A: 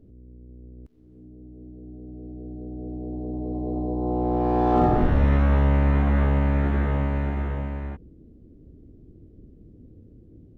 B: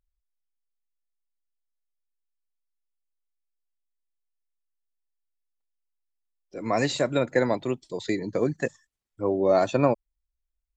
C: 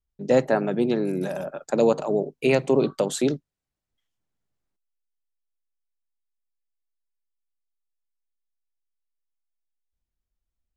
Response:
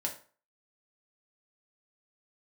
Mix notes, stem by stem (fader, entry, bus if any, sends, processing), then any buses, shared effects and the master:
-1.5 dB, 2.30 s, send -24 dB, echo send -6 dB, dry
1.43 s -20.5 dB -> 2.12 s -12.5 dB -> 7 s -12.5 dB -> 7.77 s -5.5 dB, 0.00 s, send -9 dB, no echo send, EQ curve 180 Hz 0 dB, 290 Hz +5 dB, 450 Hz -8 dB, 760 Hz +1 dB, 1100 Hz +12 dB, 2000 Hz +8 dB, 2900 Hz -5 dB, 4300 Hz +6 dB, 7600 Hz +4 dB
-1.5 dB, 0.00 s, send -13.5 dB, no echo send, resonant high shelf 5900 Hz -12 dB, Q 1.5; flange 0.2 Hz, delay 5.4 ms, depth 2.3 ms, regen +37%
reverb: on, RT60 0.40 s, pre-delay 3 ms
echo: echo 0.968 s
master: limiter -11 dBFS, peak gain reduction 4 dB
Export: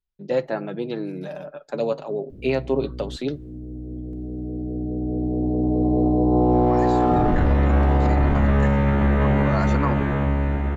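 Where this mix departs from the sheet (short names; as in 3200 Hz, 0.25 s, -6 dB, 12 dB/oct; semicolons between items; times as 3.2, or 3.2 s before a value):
stem A -1.5 dB -> +9.0 dB; reverb return -9.5 dB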